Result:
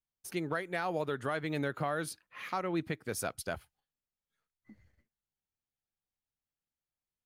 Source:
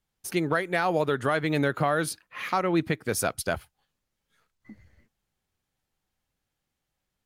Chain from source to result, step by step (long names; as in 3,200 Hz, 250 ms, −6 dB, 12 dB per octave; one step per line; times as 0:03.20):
noise gate −58 dBFS, range −8 dB
level −9 dB